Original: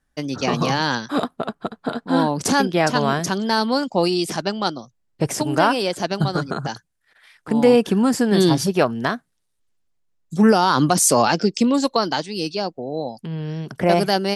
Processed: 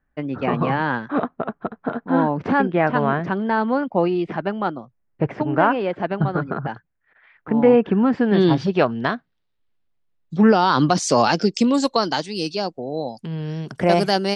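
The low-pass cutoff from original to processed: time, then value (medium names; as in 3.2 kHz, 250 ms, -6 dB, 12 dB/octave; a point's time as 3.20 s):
low-pass 24 dB/octave
7.81 s 2.3 kHz
8.78 s 4 kHz
10.50 s 4 kHz
11.81 s 9.4 kHz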